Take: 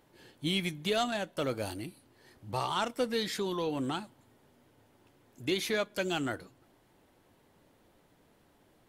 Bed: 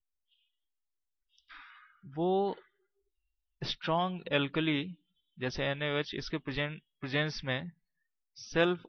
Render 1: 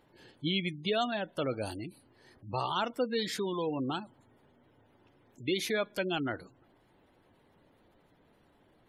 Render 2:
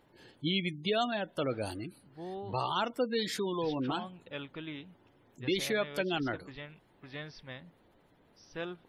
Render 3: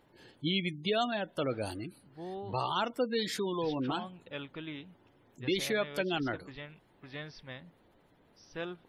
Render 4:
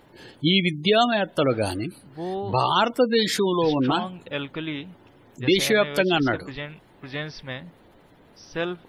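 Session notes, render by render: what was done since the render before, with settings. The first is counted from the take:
spectral gate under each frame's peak -25 dB strong
add bed -12 dB
nothing audible
gain +11.5 dB

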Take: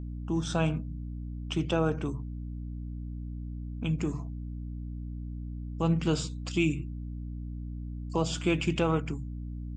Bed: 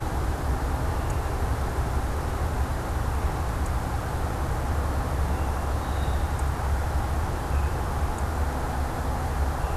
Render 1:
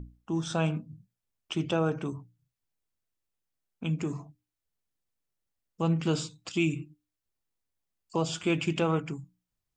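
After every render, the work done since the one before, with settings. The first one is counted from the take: notches 60/120/180/240/300 Hz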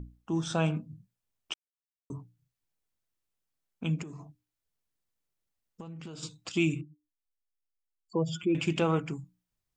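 1.54–2.1 mute; 4.02–6.23 compressor 16:1, threshold -39 dBFS; 6.81–8.55 spectral contrast raised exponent 2.2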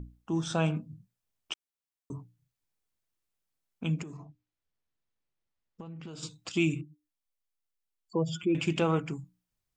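4.17–6.08 air absorption 120 m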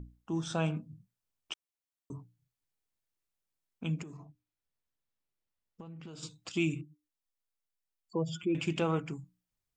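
gain -3.5 dB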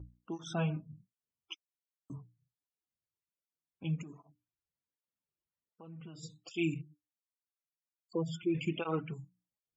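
loudest bins only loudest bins 64; tape flanging out of phase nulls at 1.3 Hz, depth 4.6 ms

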